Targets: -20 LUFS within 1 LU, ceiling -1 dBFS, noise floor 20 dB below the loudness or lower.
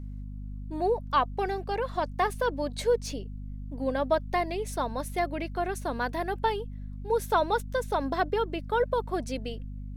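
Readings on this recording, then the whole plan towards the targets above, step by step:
hum 50 Hz; harmonics up to 250 Hz; hum level -36 dBFS; loudness -29.5 LUFS; peak -12.0 dBFS; loudness target -20.0 LUFS
-> de-hum 50 Hz, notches 5; gain +9.5 dB

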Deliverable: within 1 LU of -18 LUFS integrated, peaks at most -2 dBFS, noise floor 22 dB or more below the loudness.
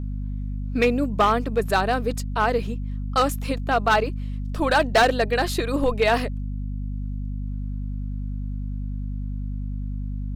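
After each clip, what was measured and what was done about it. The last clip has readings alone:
clipped 0.7%; flat tops at -12.0 dBFS; hum 50 Hz; harmonics up to 250 Hz; hum level -26 dBFS; loudness -24.5 LUFS; peak -12.0 dBFS; loudness target -18.0 LUFS
-> clip repair -12 dBFS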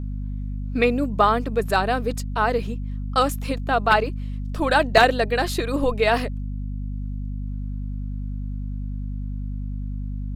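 clipped 0.0%; hum 50 Hz; harmonics up to 250 Hz; hum level -26 dBFS
-> de-hum 50 Hz, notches 5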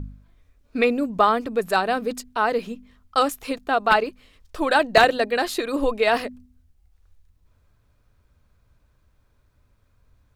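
hum none; loudness -22.0 LUFS; peak -2.5 dBFS; loudness target -18.0 LUFS
-> gain +4 dB; limiter -2 dBFS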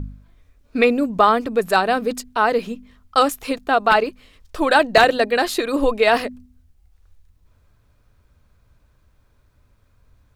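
loudness -18.5 LUFS; peak -2.0 dBFS; noise floor -59 dBFS

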